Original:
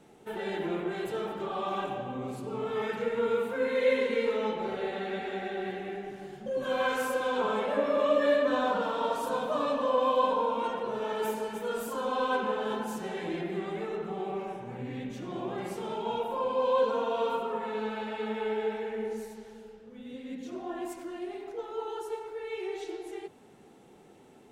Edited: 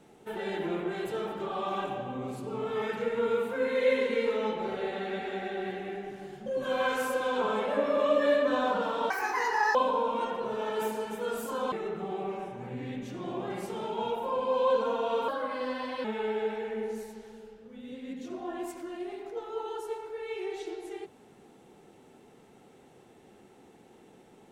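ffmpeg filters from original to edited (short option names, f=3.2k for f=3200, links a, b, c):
-filter_complex "[0:a]asplit=6[a][b][c][d][e][f];[a]atrim=end=9.104[g];[b]atrim=start=9.1:end=10.18,asetpts=PTS-STARTPTS,asetrate=73206,aresample=44100[h];[c]atrim=start=10.176:end=12.152[i];[d]atrim=start=13.798:end=17.364[j];[e]atrim=start=17.36:end=18.26,asetpts=PTS-STARTPTS,asetrate=52038,aresample=44100[k];[f]atrim=start=18.256[l];[g][h]acrossfade=d=0.004:c1=hsin:c2=hsin[m];[m][i]acrossfade=d=0.004:c1=hsin:c2=hsin[n];[n][j]acrossfade=d=0.004:c1=hsin:c2=hsin[o];[o][k]acrossfade=d=0.004:c1=hsin:c2=hsin[p];[p][l]acrossfade=d=0.004:c1=hsin:c2=hsin"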